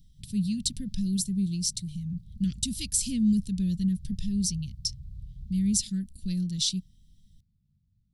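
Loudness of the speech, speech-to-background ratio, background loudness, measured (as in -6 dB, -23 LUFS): -29.0 LUFS, 19.0 dB, -48.0 LUFS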